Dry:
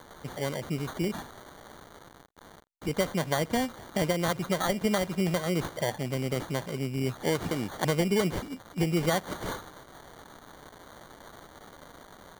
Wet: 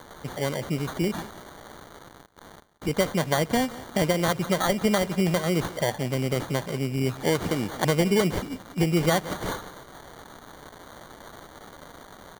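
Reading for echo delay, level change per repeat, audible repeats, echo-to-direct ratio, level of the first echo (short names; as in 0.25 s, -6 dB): 0.177 s, -11.0 dB, 2, -17.5 dB, -18.0 dB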